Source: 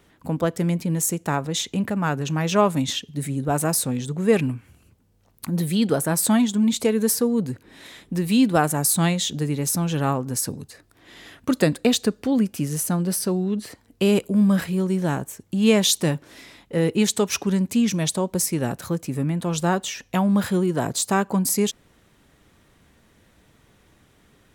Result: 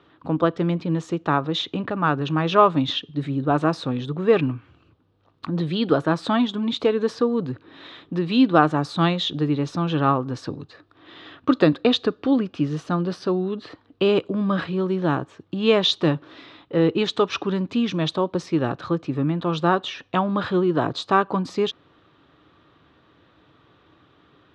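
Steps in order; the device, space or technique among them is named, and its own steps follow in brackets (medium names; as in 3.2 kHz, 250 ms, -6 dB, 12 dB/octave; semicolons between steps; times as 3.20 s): guitar cabinet (cabinet simulation 100–3800 Hz, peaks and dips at 210 Hz -9 dB, 310 Hz +6 dB, 1.2 kHz +8 dB, 2.1 kHz -6 dB, 3.7 kHz +4 dB); trim +1.5 dB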